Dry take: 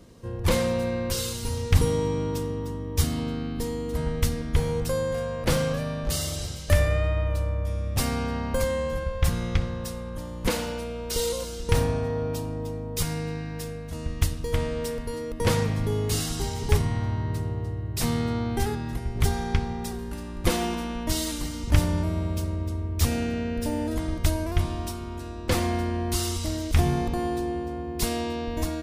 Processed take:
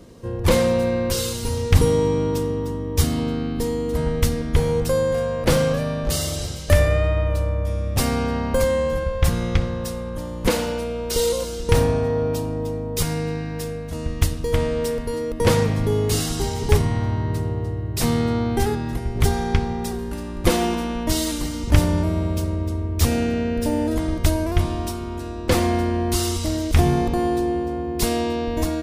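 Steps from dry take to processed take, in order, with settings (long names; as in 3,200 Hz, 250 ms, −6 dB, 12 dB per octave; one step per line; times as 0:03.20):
parametric band 420 Hz +3.5 dB 1.8 octaves
level +4 dB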